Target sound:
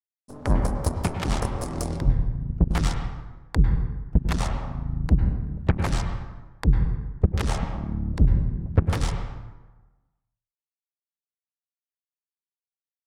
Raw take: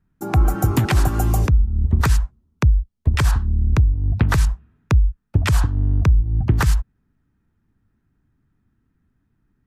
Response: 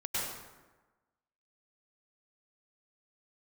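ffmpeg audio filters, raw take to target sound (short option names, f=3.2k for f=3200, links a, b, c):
-filter_complex "[0:a]aeval=exprs='sgn(val(0))*max(abs(val(0))-0.00282,0)':c=same,aeval=exprs='0.447*(cos(1*acos(clip(val(0)/0.447,-1,1)))-cos(1*PI/2))+0.2*(cos(3*acos(clip(val(0)/0.447,-1,1)))-cos(3*PI/2))+0.0355*(cos(5*acos(clip(val(0)/0.447,-1,1)))-cos(5*PI/2))+0.0224*(cos(7*acos(clip(val(0)/0.447,-1,1)))-cos(7*PI/2))+0.0158*(cos(8*acos(clip(val(0)/0.447,-1,1)))-cos(8*PI/2))':c=same,asetrate=32634,aresample=44100,asplit=2[a][b];[1:a]atrim=start_sample=2205,lowpass=2.6k[c];[b][c]afir=irnorm=-1:irlink=0,volume=-7.5dB[d];[a][d]amix=inputs=2:normalize=0,volume=-4dB"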